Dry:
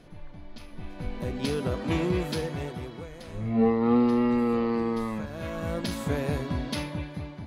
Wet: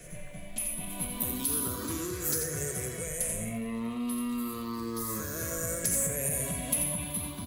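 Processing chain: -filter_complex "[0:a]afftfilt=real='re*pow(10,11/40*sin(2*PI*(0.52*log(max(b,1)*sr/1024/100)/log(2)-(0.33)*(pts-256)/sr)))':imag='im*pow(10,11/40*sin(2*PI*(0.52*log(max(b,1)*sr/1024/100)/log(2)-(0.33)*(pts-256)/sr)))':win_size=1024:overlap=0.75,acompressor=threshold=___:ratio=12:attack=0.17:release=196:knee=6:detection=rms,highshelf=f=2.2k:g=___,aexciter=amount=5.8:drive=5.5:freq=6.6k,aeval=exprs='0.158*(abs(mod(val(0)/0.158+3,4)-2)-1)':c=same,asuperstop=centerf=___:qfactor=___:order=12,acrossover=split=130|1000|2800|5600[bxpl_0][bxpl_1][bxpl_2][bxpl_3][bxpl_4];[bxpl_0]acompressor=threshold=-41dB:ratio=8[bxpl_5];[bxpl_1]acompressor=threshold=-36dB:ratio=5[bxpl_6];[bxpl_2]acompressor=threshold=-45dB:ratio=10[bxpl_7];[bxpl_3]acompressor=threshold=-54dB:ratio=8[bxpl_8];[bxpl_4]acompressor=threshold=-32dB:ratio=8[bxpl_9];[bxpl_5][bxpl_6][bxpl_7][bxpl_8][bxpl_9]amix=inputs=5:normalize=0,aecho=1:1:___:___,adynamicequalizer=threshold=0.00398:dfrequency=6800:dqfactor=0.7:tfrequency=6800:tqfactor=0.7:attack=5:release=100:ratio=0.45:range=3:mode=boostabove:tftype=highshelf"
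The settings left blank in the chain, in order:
-25dB, 8.5, 830, 5.8, 87, 0.447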